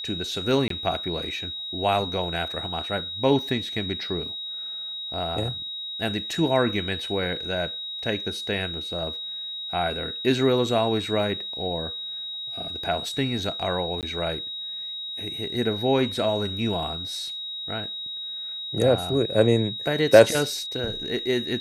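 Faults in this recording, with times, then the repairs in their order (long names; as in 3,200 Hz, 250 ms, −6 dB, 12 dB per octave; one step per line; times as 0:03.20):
whistle 3,800 Hz −31 dBFS
0:00.68–0:00.70: drop-out 23 ms
0:14.01–0:14.03: drop-out 18 ms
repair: notch filter 3,800 Hz, Q 30
repair the gap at 0:00.68, 23 ms
repair the gap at 0:14.01, 18 ms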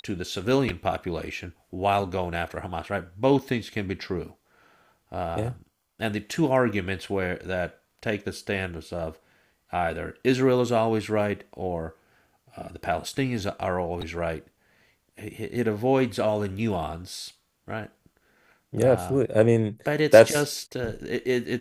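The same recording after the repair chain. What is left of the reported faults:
none of them is left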